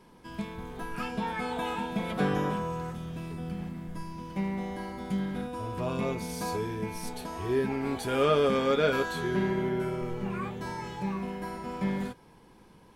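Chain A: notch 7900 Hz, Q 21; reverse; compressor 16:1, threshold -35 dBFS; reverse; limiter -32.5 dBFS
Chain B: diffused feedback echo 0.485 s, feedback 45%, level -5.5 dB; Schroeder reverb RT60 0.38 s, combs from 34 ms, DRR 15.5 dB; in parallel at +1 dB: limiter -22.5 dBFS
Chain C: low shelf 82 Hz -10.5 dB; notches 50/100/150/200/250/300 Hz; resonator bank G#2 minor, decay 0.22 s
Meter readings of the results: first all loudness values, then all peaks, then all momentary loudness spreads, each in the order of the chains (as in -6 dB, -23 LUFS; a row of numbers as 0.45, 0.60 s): -41.5, -25.0, -43.5 LUFS; -32.5, -9.5, -20.0 dBFS; 3, 10, 16 LU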